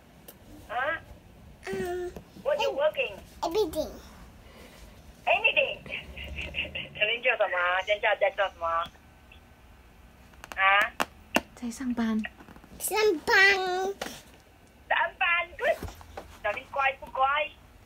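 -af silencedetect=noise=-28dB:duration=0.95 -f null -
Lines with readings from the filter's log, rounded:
silence_start: 3.85
silence_end: 5.27 | silence_duration: 1.42
silence_start: 8.83
silence_end: 10.44 | silence_duration: 1.61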